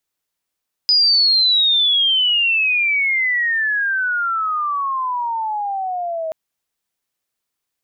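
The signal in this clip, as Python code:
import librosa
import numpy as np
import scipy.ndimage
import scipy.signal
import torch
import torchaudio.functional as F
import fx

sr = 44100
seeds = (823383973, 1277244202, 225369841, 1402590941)

y = fx.chirp(sr, length_s=5.43, from_hz=5000.0, to_hz=630.0, law='logarithmic', from_db=-10.5, to_db=-21.0)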